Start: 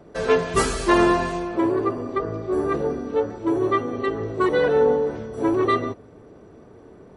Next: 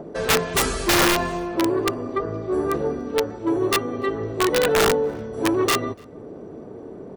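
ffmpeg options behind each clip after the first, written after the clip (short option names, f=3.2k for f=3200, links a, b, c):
-filter_complex "[0:a]acrossover=split=140|810|3700[a][b][c][d];[b]acompressor=mode=upward:threshold=-27dB:ratio=2.5[e];[a][e][c][d]amix=inputs=4:normalize=0,aeval=exprs='(mod(3.98*val(0)+1,2)-1)/3.98':c=same,asplit=2[f][g];[g]adelay=291.5,volume=-29dB,highshelf=f=4k:g=-6.56[h];[f][h]amix=inputs=2:normalize=0"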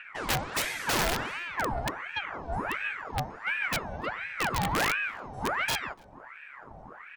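-af "aeval=exprs='val(0)*sin(2*PI*1200*n/s+1200*0.75/1.4*sin(2*PI*1.4*n/s))':c=same,volume=-6.5dB"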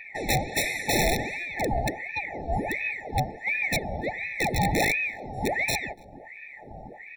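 -af "afftfilt=real='re*eq(mod(floor(b*sr/1024/870),2),0)':imag='im*eq(mod(floor(b*sr/1024/870),2),0)':win_size=1024:overlap=0.75,volume=6dB"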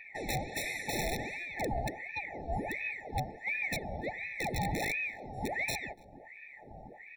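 -af "alimiter=limit=-16.5dB:level=0:latency=1:release=76,volume=-7dB"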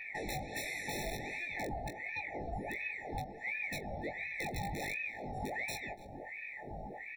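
-af "acompressor=threshold=-44dB:ratio=4,aecho=1:1:20|44:0.668|0.126,volume=4dB"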